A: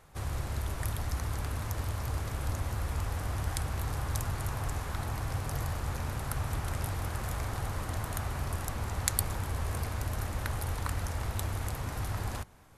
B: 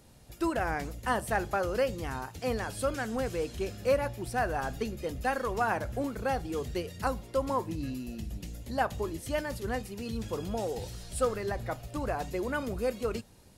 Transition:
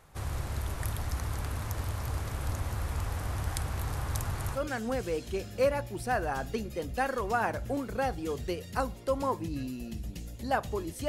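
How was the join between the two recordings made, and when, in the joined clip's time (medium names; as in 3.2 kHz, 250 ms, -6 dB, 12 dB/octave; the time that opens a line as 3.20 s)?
A
4.57 s: go over to B from 2.84 s, crossfade 0.12 s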